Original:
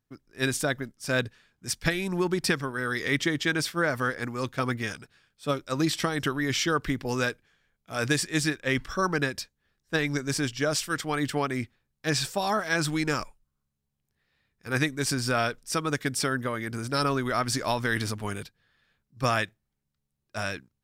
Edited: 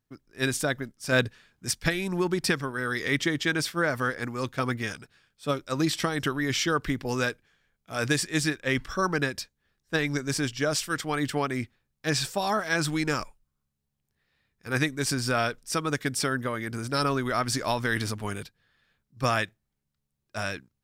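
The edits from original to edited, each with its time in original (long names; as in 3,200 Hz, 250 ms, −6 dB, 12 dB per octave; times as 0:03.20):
0:01.12–0:01.71: clip gain +3.5 dB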